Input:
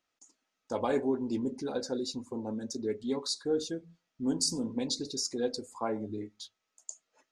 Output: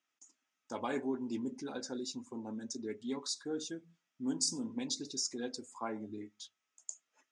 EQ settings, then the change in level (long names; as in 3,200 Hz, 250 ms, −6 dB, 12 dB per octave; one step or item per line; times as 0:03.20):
loudspeaker in its box 180–8,500 Hz, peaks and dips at 180 Hz −4 dB, 490 Hz −4 dB, 4,300 Hz −9 dB
parametric band 530 Hz −7.5 dB 1.9 octaves
0.0 dB